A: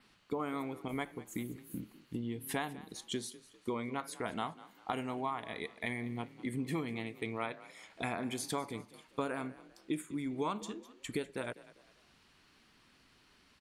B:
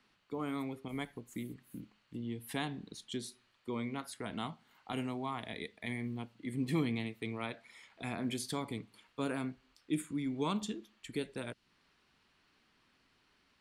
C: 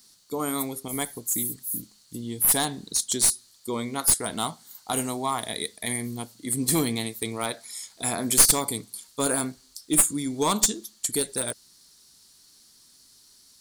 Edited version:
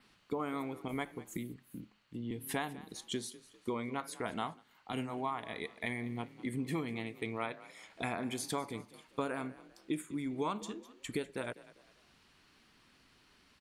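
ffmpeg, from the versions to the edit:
-filter_complex "[1:a]asplit=2[a][b];[0:a]asplit=3[c][d][e];[c]atrim=end=1.372[f];[a]atrim=start=1.368:end=2.312[g];[d]atrim=start=2.308:end=4.64[h];[b]atrim=start=4.54:end=5.14[i];[e]atrim=start=5.04[j];[f][g]acrossfade=d=0.004:c1=hsin:c2=hsin[k];[k][h]acrossfade=d=0.004:c1=hsin:c2=hsin[l];[l][i]acrossfade=d=0.1:c1=tri:c2=tri[m];[m][j]acrossfade=d=0.1:c1=tri:c2=tri"

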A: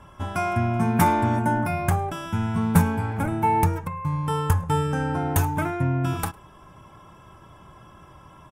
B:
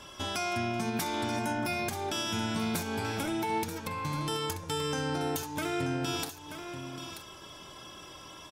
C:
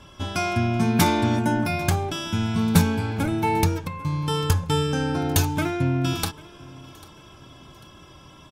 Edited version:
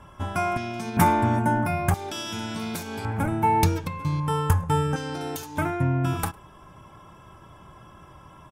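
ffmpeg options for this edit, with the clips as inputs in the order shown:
-filter_complex "[1:a]asplit=3[a][b][c];[0:a]asplit=5[d][e][f][g][h];[d]atrim=end=0.572[i];[a]atrim=start=0.568:end=0.972[j];[e]atrim=start=0.968:end=1.942[k];[b]atrim=start=1.938:end=3.052[l];[f]atrim=start=3.048:end=3.632[m];[2:a]atrim=start=3.628:end=4.202[n];[g]atrim=start=4.198:end=4.962[o];[c]atrim=start=4.958:end=5.582[p];[h]atrim=start=5.578[q];[i][j]acrossfade=d=0.004:c1=hsin:c2=hsin[r];[r][k]acrossfade=d=0.004:c1=hsin:c2=hsin[s];[s][l]acrossfade=d=0.004:c1=hsin:c2=hsin[t];[t][m]acrossfade=d=0.004:c1=hsin:c2=hsin[u];[u][n]acrossfade=d=0.004:c1=hsin:c2=hsin[v];[v][o]acrossfade=d=0.004:c1=hsin:c2=hsin[w];[w][p]acrossfade=d=0.004:c1=hsin:c2=hsin[x];[x][q]acrossfade=d=0.004:c1=hsin:c2=hsin"

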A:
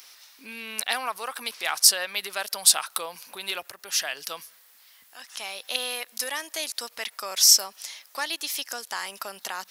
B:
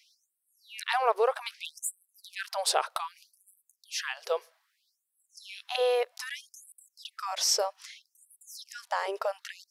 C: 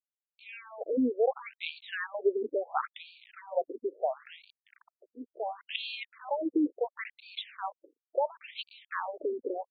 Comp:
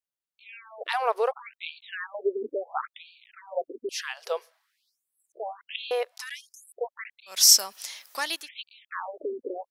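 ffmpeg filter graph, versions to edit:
-filter_complex "[1:a]asplit=3[a][b][c];[2:a]asplit=5[d][e][f][g][h];[d]atrim=end=0.89[i];[a]atrim=start=0.85:end=1.32[j];[e]atrim=start=1.28:end=3.892[k];[b]atrim=start=3.888:end=5.322[l];[f]atrim=start=5.318:end=5.912[m];[c]atrim=start=5.908:end=6.732[n];[g]atrim=start=6.728:end=7.42[o];[0:a]atrim=start=7.26:end=8.49[p];[h]atrim=start=8.33[q];[i][j]acrossfade=d=0.04:c1=tri:c2=tri[r];[r][k]acrossfade=d=0.04:c1=tri:c2=tri[s];[s][l]acrossfade=d=0.004:c1=hsin:c2=hsin[t];[t][m]acrossfade=d=0.004:c1=hsin:c2=hsin[u];[u][n]acrossfade=d=0.004:c1=hsin:c2=hsin[v];[v][o]acrossfade=d=0.004:c1=hsin:c2=hsin[w];[w][p]acrossfade=d=0.16:c1=tri:c2=tri[x];[x][q]acrossfade=d=0.16:c1=tri:c2=tri"

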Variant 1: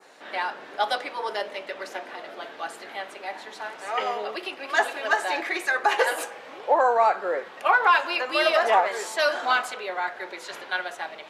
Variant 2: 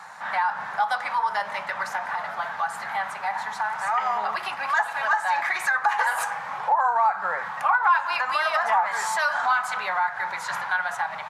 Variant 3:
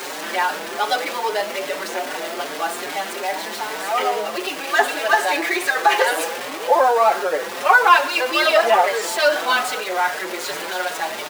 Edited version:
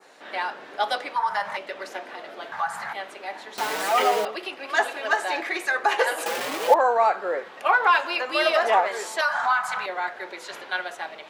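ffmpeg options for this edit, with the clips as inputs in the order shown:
-filter_complex "[1:a]asplit=3[a][b][c];[2:a]asplit=2[d][e];[0:a]asplit=6[f][g][h][i][j][k];[f]atrim=end=1.162[l];[a]atrim=start=1.158:end=1.572[m];[g]atrim=start=1.568:end=2.522[n];[b]atrim=start=2.518:end=2.932[o];[h]atrim=start=2.928:end=3.582[p];[d]atrim=start=3.578:end=4.252[q];[i]atrim=start=4.248:end=6.262[r];[e]atrim=start=6.258:end=6.742[s];[j]atrim=start=6.738:end=9.212[t];[c]atrim=start=9.208:end=9.862[u];[k]atrim=start=9.858[v];[l][m]acrossfade=d=0.004:c1=hsin:c2=hsin[w];[w][n]acrossfade=d=0.004:c1=hsin:c2=hsin[x];[x][o]acrossfade=d=0.004:c1=hsin:c2=hsin[y];[y][p]acrossfade=d=0.004:c1=hsin:c2=hsin[z];[z][q]acrossfade=d=0.004:c1=hsin:c2=hsin[aa];[aa][r]acrossfade=d=0.004:c1=hsin:c2=hsin[ab];[ab][s]acrossfade=d=0.004:c1=hsin:c2=hsin[ac];[ac][t]acrossfade=d=0.004:c1=hsin:c2=hsin[ad];[ad][u]acrossfade=d=0.004:c1=hsin:c2=hsin[ae];[ae][v]acrossfade=d=0.004:c1=hsin:c2=hsin"

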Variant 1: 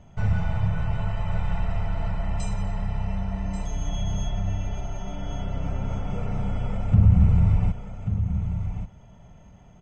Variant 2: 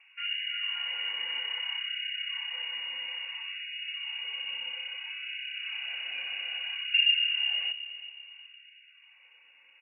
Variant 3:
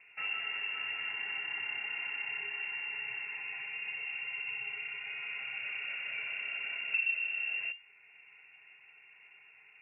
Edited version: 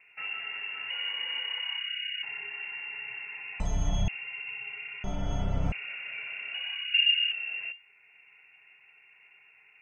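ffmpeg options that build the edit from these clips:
-filter_complex "[1:a]asplit=2[a][b];[0:a]asplit=2[c][d];[2:a]asplit=5[e][f][g][h][i];[e]atrim=end=0.902[j];[a]atrim=start=0.898:end=2.232[k];[f]atrim=start=2.228:end=3.602[l];[c]atrim=start=3.598:end=4.082[m];[g]atrim=start=4.078:end=5.042[n];[d]atrim=start=5.038:end=5.722[o];[h]atrim=start=5.718:end=6.542[p];[b]atrim=start=6.538:end=7.322[q];[i]atrim=start=7.318[r];[j][k]acrossfade=d=0.004:c1=hsin:c2=hsin[s];[s][l]acrossfade=d=0.004:c1=hsin:c2=hsin[t];[t][m]acrossfade=d=0.004:c1=hsin:c2=hsin[u];[u][n]acrossfade=d=0.004:c1=hsin:c2=hsin[v];[v][o]acrossfade=d=0.004:c1=hsin:c2=hsin[w];[w][p]acrossfade=d=0.004:c1=hsin:c2=hsin[x];[x][q]acrossfade=d=0.004:c1=hsin:c2=hsin[y];[y][r]acrossfade=d=0.004:c1=hsin:c2=hsin"

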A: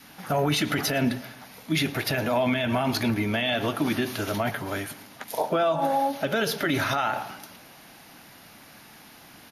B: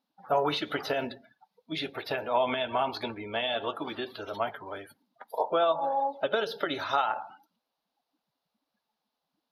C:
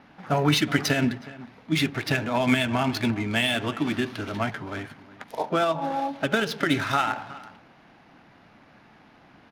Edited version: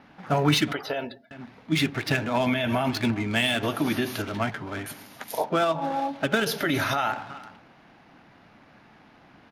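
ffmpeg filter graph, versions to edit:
-filter_complex "[0:a]asplit=4[a][b][c][d];[2:a]asplit=6[e][f][g][h][i][j];[e]atrim=end=0.732[k];[1:a]atrim=start=0.728:end=1.312[l];[f]atrim=start=1.308:end=2.462[m];[a]atrim=start=2.458:end=2.892[n];[g]atrim=start=2.888:end=3.632[o];[b]atrim=start=3.628:end=4.222[p];[h]atrim=start=4.218:end=4.862[q];[c]atrim=start=4.858:end=5.442[r];[i]atrim=start=5.438:end=6.462[s];[d]atrim=start=6.458:end=7.122[t];[j]atrim=start=7.118[u];[k][l]acrossfade=d=0.004:c1=hsin:c2=hsin[v];[v][m]acrossfade=d=0.004:c1=hsin:c2=hsin[w];[w][n]acrossfade=d=0.004:c1=hsin:c2=hsin[x];[x][o]acrossfade=d=0.004:c1=hsin:c2=hsin[y];[y][p]acrossfade=d=0.004:c1=hsin:c2=hsin[z];[z][q]acrossfade=d=0.004:c1=hsin:c2=hsin[aa];[aa][r]acrossfade=d=0.004:c1=hsin:c2=hsin[ab];[ab][s]acrossfade=d=0.004:c1=hsin:c2=hsin[ac];[ac][t]acrossfade=d=0.004:c1=hsin:c2=hsin[ad];[ad][u]acrossfade=d=0.004:c1=hsin:c2=hsin"

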